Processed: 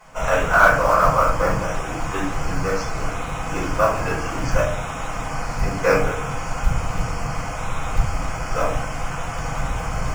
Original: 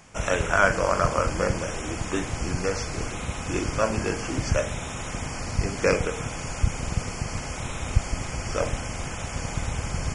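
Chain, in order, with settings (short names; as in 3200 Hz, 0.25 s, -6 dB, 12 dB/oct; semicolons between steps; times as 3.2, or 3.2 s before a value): bell 1100 Hz +11 dB 1.7 oct; companded quantiser 6-bit; shoebox room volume 210 m³, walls furnished, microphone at 5.1 m; gain -10.5 dB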